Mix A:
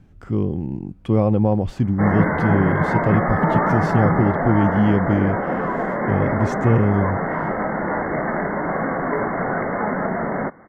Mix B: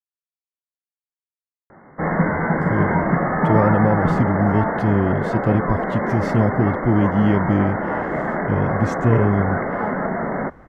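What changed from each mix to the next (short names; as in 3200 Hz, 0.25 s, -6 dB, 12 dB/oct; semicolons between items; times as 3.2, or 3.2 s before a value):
speech: entry +2.40 s; background: add air absorption 57 m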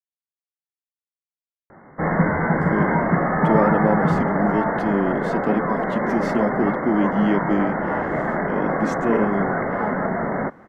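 speech: add steep high-pass 200 Hz 36 dB/oct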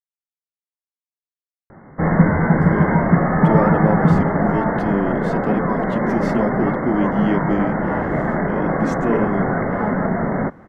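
background: add low shelf 230 Hz +10 dB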